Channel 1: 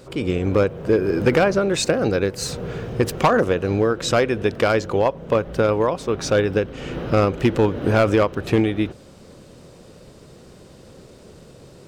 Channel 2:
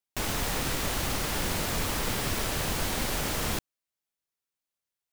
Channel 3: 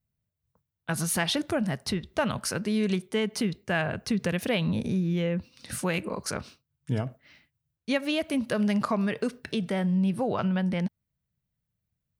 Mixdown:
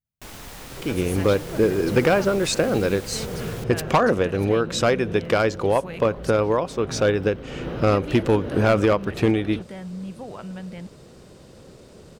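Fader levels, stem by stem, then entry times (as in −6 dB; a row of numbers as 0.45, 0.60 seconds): −1.5, −9.5, −9.0 decibels; 0.70, 0.05, 0.00 seconds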